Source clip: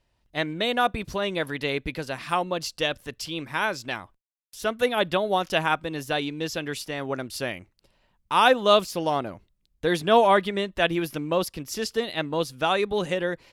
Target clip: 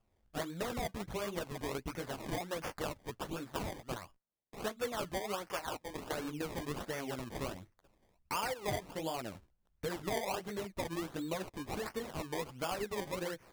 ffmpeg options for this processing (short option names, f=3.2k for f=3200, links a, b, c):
-filter_complex "[0:a]asplit=3[a][b][c];[a]afade=t=out:st=3.22:d=0.02[d];[b]agate=range=-33dB:threshold=-30dB:ratio=3:detection=peak,afade=t=in:st=3.22:d=0.02,afade=t=out:st=3.89:d=0.02[e];[c]afade=t=in:st=3.89:d=0.02[f];[d][e][f]amix=inputs=3:normalize=0,asettb=1/sr,asplit=3[g][h][i];[g]atrim=end=5.474[j];[h]atrim=start=5.47:end=6.13,asetpts=PTS-STARTPTS,afade=t=in:d=0.004:c=qsin,afade=t=out:st=0.656:d=0.004:c=qsin,highpass=470[k];[i]atrim=start=6.126[l];[j][k]acrossfade=d=0.004:c1=hsin:c2=qsin[m];[m][l]acrossfade=d=0.004:c1=qsin:c2=hsin,acompressor=threshold=-31dB:ratio=5,flanger=delay=8.8:depth=8.8:regen=-12:speed=1.3:shape=sinusoidal,acrusher=samples=22:mix=1:aa=0.000001:lfo=1:lforange=22:lforate=1.4,volume=-1dB"